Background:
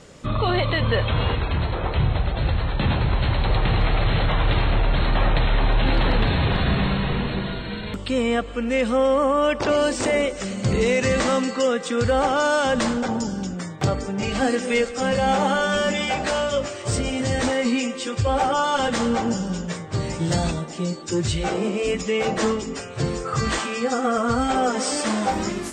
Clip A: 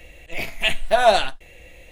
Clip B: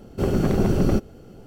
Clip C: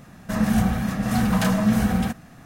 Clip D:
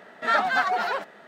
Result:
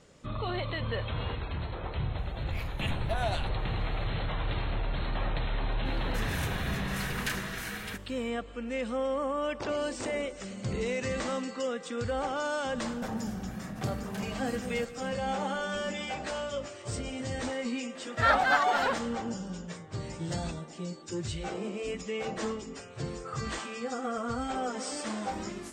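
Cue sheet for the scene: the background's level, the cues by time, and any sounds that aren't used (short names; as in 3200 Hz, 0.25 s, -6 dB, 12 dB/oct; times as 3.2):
background -12 dB
2.18 add A -15 dB + limiter -8.5 dBFS
5.85 add C -6.5 dB + resonant high-pass 1800 Hz, resonance Q 1.5
12.73 add C -7.5 dB, fades 0.10 s + compressor 4:1, threshold -30 dBFS
17.95 add D -2 dB
not used: B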